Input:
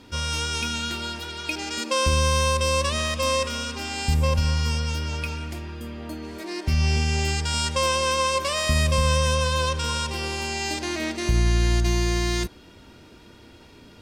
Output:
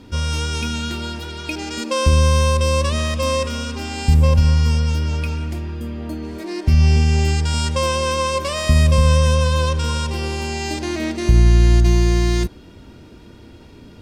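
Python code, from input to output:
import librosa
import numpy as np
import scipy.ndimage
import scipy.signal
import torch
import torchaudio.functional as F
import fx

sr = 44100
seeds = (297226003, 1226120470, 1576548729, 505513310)

y = fx.low_shelf(x, sr, hz=490.0, db=9.0)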